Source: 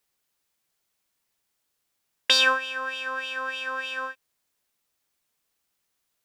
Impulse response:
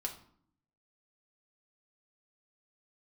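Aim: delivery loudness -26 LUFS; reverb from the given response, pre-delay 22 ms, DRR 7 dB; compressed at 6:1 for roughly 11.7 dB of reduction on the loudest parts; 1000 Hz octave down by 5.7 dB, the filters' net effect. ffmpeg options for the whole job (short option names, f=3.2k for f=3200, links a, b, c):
-filter_complex "[0:a]equalizer=f=1k:t=o:g=-6.5,acompressor=threshold=-29dB:ratio=6,asplit=2[a][b];[1:a]atrim=start_sample=2205,adelay=22[c];[b][c]afir=irnorm=-1:irlink=0,volume=-7.5dB[d];[a][d]amix=inputs=2:normalize=0,volume=7.5dB"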